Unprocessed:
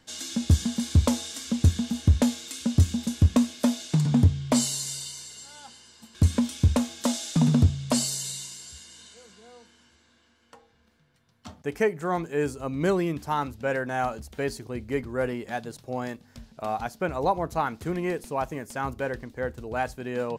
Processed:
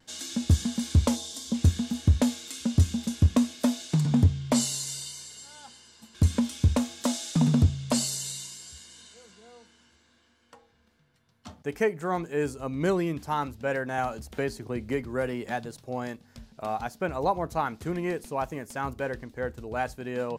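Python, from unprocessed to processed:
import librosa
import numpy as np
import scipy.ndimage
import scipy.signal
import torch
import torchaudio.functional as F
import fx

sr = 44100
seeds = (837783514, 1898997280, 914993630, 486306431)

y = fx.vibrato(x, sr, rate_hz=0.6, depth_cents=20.0)
y = fx.spec_box(y, sr, start_s=1.16, length_s=0.38, low_hz=1100.0, high_hz=3000.0, gain_db=-9)
y = fx.band_squash(y, sr, depth_pct=70, at=(13.98, 15.66))
y = y * librosa.db_to_amplitude(-1.5)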